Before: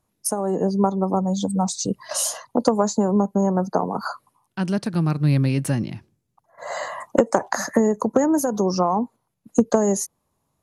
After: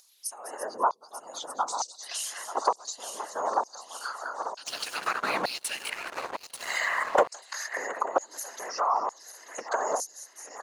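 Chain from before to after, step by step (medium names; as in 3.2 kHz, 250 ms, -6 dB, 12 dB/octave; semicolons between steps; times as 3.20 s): backward echo that repeats 444 ms, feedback 76%, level -13 dB; delay 201 ms -13 dB; whisper effect; LFO high-pass saw down 1.1 Hz 970–5000 Hz; upward compressor, threshold -39 dBFS; 4.66–7.29 s: waveshaping leveller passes 3; compression 2:1, threshold -30 dBFS, peak gain reduction 10 dB; peaking EQ 590 Hz +12.5 dB 2.7 oct; trim -6 dB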